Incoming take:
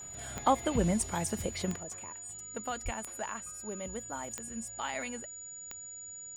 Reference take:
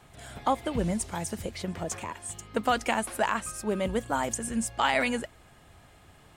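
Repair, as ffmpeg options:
-filter_complex "[0:a]adeclick=t=4,bandreject=f=6.9k:w=30,asplit=3[a][b][c];[a]afade=t=out:st=2.84:d=0.02[d];[b]highpass=f=140:w=0.5412,highpass=f=140:w=1.3066,afade=t=in:st=2.84:d=0.02,afade=t=out:st=2.96:d=0.02[e];[c]afade=t=in:st=2.96:d=0.02[f];[d][e][f]amix=inputs=3:normalize=0,asetnsamples=n=441:p=0,asendcmd='1.76 volume volume 12dB',volume=0dB"

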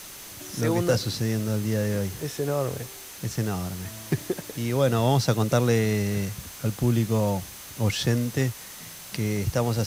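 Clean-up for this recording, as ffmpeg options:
-af "bandreject=f=6.2k:w=30,afwtdn=0.0089"

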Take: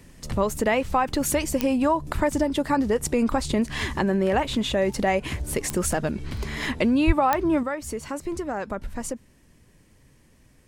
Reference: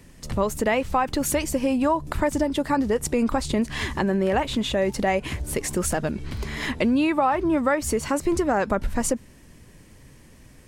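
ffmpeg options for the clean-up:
-filter_complex "[0:a]adeclick=t=4,asplit=3[a][b][c];[a]afade=t=out:st=7.06:d=0.02[d];[b]highpass=f=140:w=0.5412,highpass=f=140:w=1.3066,afade=t=in:st=7.06:d=0.02,afade=t=out:st=7.18:d=0.02[e];[c]afade=t=in:st=7.18:d=0.02[f];[d][e][f]amix=inputs=3:normalize=0,asetnsamples=n=441:p=0,asendcmd='7.63 volume volume 7.5dB',volume=0dB"

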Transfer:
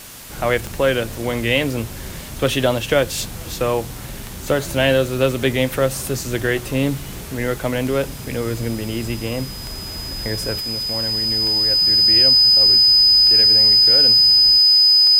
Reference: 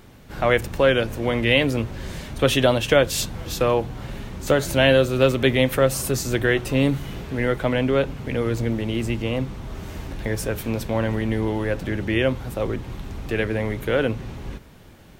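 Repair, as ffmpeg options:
-af "adeclick=t=4,bandreject=f=5k:w=30,afwtdn=0.014,asetnsamples=n=441:p=0,asendcmd='10.6 volume volume 6.5dB',volume=0dB"

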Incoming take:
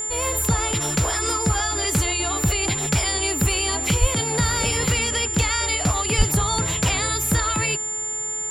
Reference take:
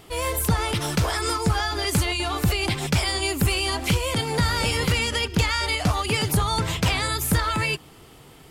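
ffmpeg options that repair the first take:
-filter_complex "[0:a]bandreject=f=430.5:t=h:w=4,bandreject=f=861:t=h:w=4,bandreject=f=1.2915k:t=h:w=4,bandreject=f=1.722k:t=h:w=4,bandreject=f=2.1525k:t=h:w=4,bandreject=f=7.2k:w=30,asplit=3[a][b][c];[a]afade=t=out:st=4:d=0.02[d];[b]highpass=f=140:w=0.5412,highpass=f=140:w=1.3066,afade=t=in:st=4:d=0.02,afade=t=out:st=4.12:d=0.02[e];[c]afade=t=in:st=4.12:d=0.02[f];[d][e][f]amix=inputs=3:normalize=0,asplit=3[g][h][i];[g]afade=t=out:st=6.17:d=0.02[j];[h]highpass=f=140:w=0.5412,highpass=f=140:w=1.3066,afade=t=in:st=6.17:d=0.02,afade=t=out:st=6.29:d=0.02[k];[i]afade=t=in:st=6.29:d=0.02[l];[j][k][l]amix=inputs=3:normalize=0"

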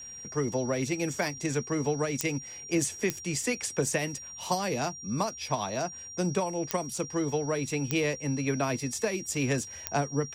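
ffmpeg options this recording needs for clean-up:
-af "adeclick=t=4,bandreject=f=5.7k:w=30"

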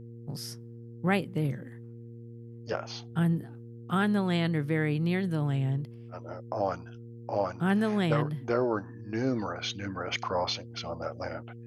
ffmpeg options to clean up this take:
-af "bandreject=f=117:t=h:w=4,bandreject=f=234:t=h:w=4,bandreject=f=351:t=h:w=4,bandreject=f=468:t=h:w=4"

